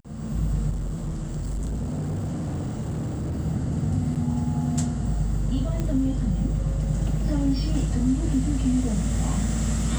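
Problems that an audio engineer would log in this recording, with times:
0:00.70–0:03.39: clipping −25 dBFS
0:04.15–0:04.16: drop-out 7.7 ms
0:05.80: click −16 dBFS

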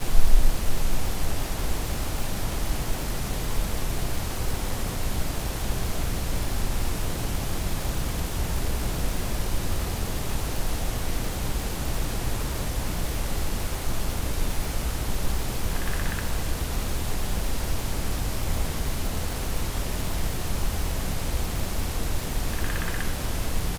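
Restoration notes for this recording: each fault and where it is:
surface crackle 250 per second −29 dBFS

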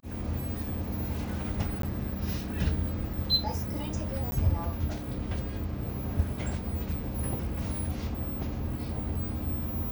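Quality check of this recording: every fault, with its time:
0:01.82–0:01.83: drop-out
0:04.31–0:04.32: drop-out

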